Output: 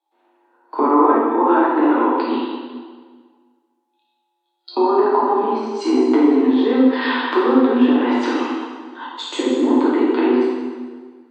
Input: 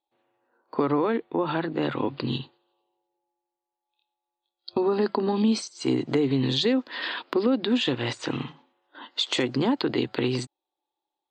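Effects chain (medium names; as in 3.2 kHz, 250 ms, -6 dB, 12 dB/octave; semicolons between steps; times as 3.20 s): time-frequency box 9.06–9.79 s, 620–6400 Hz -9 dB; low-pass that closes with the level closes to 1.5 kHz, closed at -22 dBFS; rippled Chebyshev high-pass 240 Hz, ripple 9 dB; plate-style reverb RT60 1.6 s, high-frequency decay 0.85×, DRR -7 dB; trim +8.5 dB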